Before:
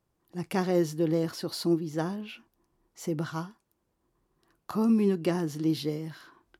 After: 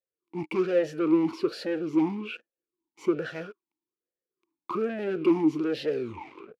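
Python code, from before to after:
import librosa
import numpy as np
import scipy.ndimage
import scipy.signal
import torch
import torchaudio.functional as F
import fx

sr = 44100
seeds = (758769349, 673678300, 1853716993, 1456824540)

y = fx.tape_stop_end(x, sr, length_s=0.71)
y = fx.leveller(y, sr, passes=5)
y = fx.vowel_sweep(y, sr, vowels='e-u', hz=1.2)
y = y * librosa.db_to_amplitude(2.0)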